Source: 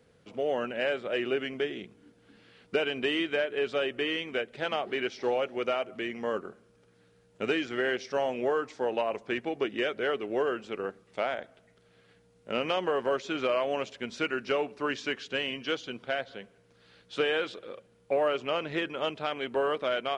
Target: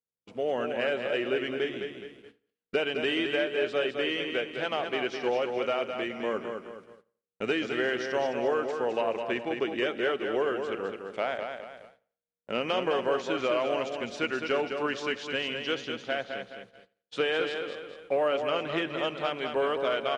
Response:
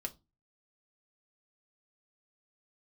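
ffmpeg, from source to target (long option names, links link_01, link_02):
-filter_complex "[0:a]asplit=2[link_01][link_02];[link_02]aecho=0:1:210|420|630|840|1050:0.501|0.195|0.0762|0.0297|0.0116[link_03];[link_01][link_03]amix=inputs=2:normalize=0,agate=range=-40dB:threshold=-49dB:ratio=16:detection=peak,asplit=2[link_04][link_05];[link_05]adelay=87,lowpass=frequency=3900:poles=1,volume=-21dB,asplit=2[link_06][link_07];[link_07]adelay=87,lowpass=frequency=3900:poles=1,volume=0.35,asplit=2[link_08][link_09];[link_09]adelay=87,lowpass=frequency=3900:poles=1,volume=0.35[link_10];[link_06][link_08][link_10]amix=inputs=3:normalize=0[link_11];[link_04][link_11]amix=inputs=2:normalize=0"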